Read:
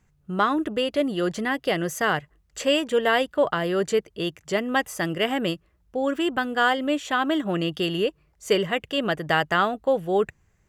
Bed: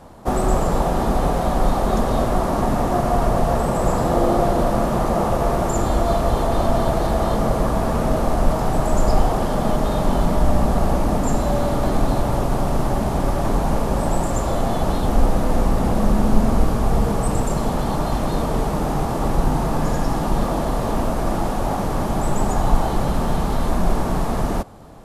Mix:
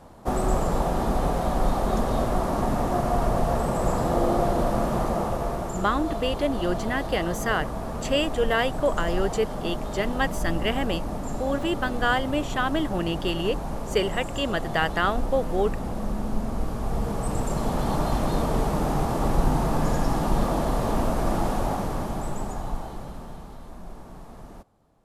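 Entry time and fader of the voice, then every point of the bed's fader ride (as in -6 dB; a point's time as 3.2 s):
5.45 s, -2.5 dB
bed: 5 s -5 dB
5.85 s -11.5 dB
16.52 s -11.5 dB
17.93 s -3 dB
21.56 s -3 dB
23.63 s -22 dB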